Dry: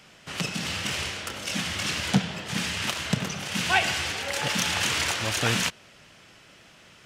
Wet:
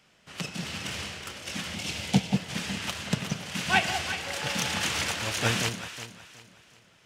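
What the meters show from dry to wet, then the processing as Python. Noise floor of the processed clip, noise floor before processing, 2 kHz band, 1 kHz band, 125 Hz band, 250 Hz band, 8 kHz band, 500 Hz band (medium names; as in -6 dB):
-60 dBFS, -53 dBFS, -3.0 dB, -2.0 dB, -1.0 dB, -0.5 dB, -3.5 dB, -2.0 dB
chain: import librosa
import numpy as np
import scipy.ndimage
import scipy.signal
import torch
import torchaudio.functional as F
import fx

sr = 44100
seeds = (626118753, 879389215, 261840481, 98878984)

y = fx.spec_box(x, sr, start_s=1.75, length_s=0.61, low_hz=950.0, high_hz=2000.0, gain_db=-8)
y = fx.echo_alternate(y, sr, ms=184, hz=850.0, feedback_pct=63, wet_db=-3.0)
y = fx.upward_expand(y, sr, threshold_db=-37.0, expansion=1.5)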